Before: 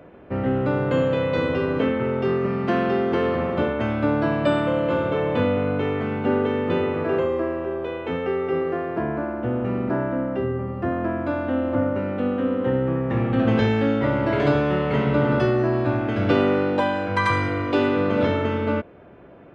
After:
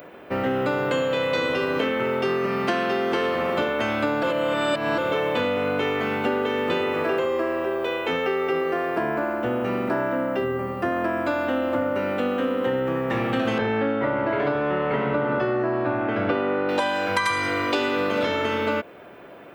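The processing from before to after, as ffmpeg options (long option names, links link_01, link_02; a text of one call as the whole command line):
ffmpeg -i in.wav -filter_complex "[0:a]asettb=1/sr,asplit=3[link_01][link_02][link_03];[link_01]atrim=end=13.584[link_04];[link_02]atrim=start=13.58:end=16.69,asetpts=PTS-STARTPTS,afade=type=in:duration=0.004:curve=qsin,afade=type=out:start_time=3.106:duration=0.004:curve=qsin,lowpass=1700[link_05];[link_03]atrim=start=16.686[link_06];[link_04][link_05]acrossfade=duration=0.004:curve1=hsin:curve2=qsin[link_07];[link_07][link_06]acrossfade=duration=0.004:curve1=qsin:curve2=hsin,asplit=3[link_08][link_09][link_10];[link_08]atrim=end=4.232[link_11];[link_09]atrim=start=4.228:end=4.982,asetpts=PTS-STARTPTS,areverse[link_12];[link_10]atrim=start=4.978[link_13];[link_11][link_12]acrossfade=duration=0.004:curve1=hsin:curve2=hsin[link_14];[link_14][link_13]acrossfade=duration=0.004:curve1=hsin:curve2=hsin,aemphasis=mode=production:type=riaa,acompressor=threshold=-26dB:ratio=6,volume=6dB" out.wav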